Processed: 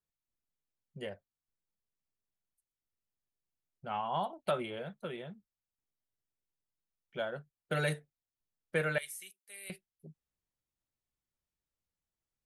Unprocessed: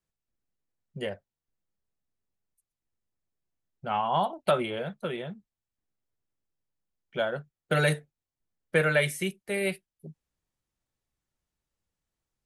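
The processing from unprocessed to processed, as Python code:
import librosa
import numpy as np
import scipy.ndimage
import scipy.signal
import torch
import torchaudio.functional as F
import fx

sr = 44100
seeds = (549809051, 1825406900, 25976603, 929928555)

y = fx.differentiator(x, sr, at=(8.98, 9.7))
y = y * librosa.db_to_amplitude(-8.0)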